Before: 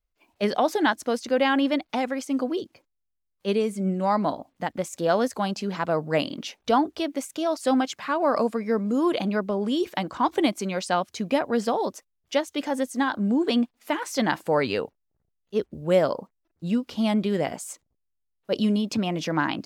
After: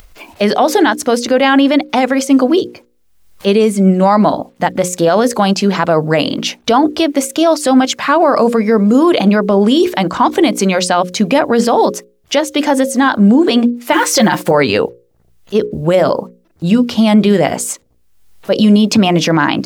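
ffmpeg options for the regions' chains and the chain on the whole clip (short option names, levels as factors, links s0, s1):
-filter_complex "[0:a]asettb=1/sr,asplit=3[s0][s1][s2];[s0]atrim=end=13.924[s3];[s1]atrim=start=13.92:end=14.51,asetpts=PTS-STARTPTS,afade=t=in:d=0.004:c=qsin,afade=t=out:st=0.586:d=0.004:c=qsin,aecho=1:1:5.6:0.97,atrim=end_sample=26019,acrusher=bits=7:mix=0:aa=0.5[s4];[s2]atrim=start=14.506[s5];[s3][s4]acrossfade=d=0.004:c1=hsin:c2=qsin[s6];[s6][s5]acrossfade=d=0.004:c1=qsin:c2=hsin,bandreject=f=60:t=h:w=6,bandreject=f=120:t=h:w=6,bandreject=f=180:t=h:w=6,bandreject=f=240:t=h:w=6,bandreject=f=300:t=h:w=6,bandreject=f=360:t=h:w=6,bandreject=f=420:t=h:w=6,bandreject=f=480:t=h:w=6,bandreject=f=540:t=h:w=6,acompressor=mode=upward:threshold=0.00891:ratio=2.5,alimiter=level_in=7.94:limit=0.891:release=50:level=0:latency=1,volume=0.891"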